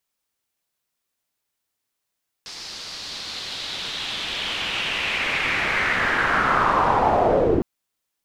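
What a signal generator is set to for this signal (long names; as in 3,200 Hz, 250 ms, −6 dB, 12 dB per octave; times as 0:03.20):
filter sweep on noise white, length 5.16 s lowpass, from 5,000 Hz, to 320 Hz, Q 3.2, linear, gain ramp +29 dB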